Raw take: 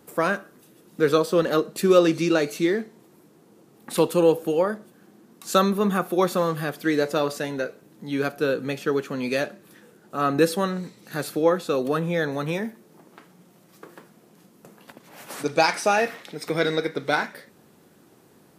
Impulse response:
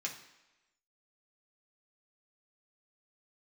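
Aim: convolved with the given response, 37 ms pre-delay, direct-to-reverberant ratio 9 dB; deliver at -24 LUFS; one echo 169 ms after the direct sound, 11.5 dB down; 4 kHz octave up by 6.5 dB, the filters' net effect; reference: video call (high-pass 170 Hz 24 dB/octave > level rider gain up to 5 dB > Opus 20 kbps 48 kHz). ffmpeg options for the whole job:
-filter_complex "[0:a]equalizer=f=4000:t=o:g=7.5,aecho=1:1:169:0.266,asplit=2[s0][s1];[1:a]atrim=start_sample=2205,adelay=37[s2];[s1][s2]afir=irnorm=-1:irlink=0,volume=0.299[s3];[s0][s3]amix=inputs=2:normalize=0,highpass=f=170:w=0.5412,highpass=f=170:w=1.3066,dynaudnorm=m=1.78,volume=0.891" -ar 48000 -c:a libopus -b:a 20k

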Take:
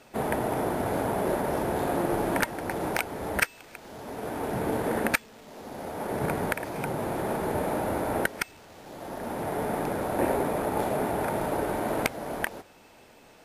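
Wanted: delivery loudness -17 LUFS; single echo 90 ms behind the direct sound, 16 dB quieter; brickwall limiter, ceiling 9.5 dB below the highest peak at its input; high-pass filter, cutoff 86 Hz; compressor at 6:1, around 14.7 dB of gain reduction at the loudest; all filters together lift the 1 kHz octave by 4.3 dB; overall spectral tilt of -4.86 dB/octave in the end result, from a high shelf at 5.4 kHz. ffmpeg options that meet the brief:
-af "highpass=86,equalizer=f=1000:t=o:g=5.5,highshelf=f=5400:g=5,acompressor=threshold=0.0178:ratio=6,alimiter=level_in=1.78:limit=0.0631:level=0:latency=1,volume=0.562,aecho=1:1:90:0.158,volume=13.3"

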